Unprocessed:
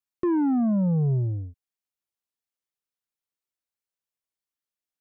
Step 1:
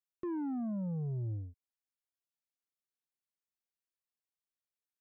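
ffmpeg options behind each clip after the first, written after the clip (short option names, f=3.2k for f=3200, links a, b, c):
-af "alimiter=level_in=1.5dB:limit=-24dB:level=0:latency=1,volume=-1.5dB,volume=-8.5dB"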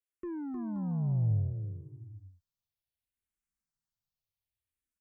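-filter_complex "[0:a]asubboost=boost=11.5:cutoff=140,asplit=2[a][b];[b]aecho=0:1:310|527|678.9|785.2|859.7:0.631|0.398|0.251|0.158|0.1[c];[a][c]amix=inputs=2:normalize=0,asplit=2[d][e];[e]afreqshift=-0.64[f];[d][f]amix=inputs=2:normalize=1"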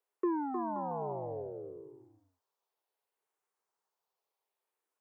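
-af "highpass=f=420:t=q:w=4.9,equalizer=f=920:t=o:w=1.2:g=15"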